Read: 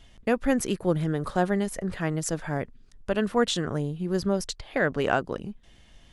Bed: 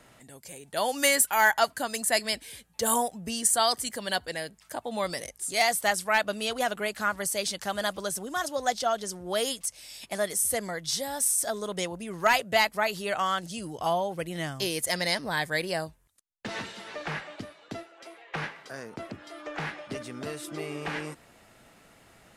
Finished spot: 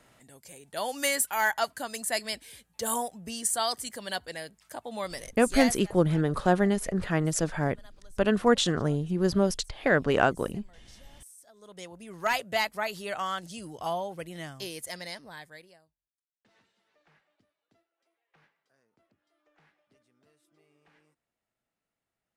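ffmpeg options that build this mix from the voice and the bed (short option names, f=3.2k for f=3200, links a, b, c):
-filter_complex "[0:a]adelay=5100,volume=1.5dB[a];[1:a]volume=17.5dB,afade=t=out:st=5.6:d=0.21:silence=0.0794328,afade=t=in:st=11.53:d=0.8:silence=0.0794328,afade=t=out:st=13.99:d=1.8:silence=0.0421697[b];[a][b]amix=inputs=2:normalize=0"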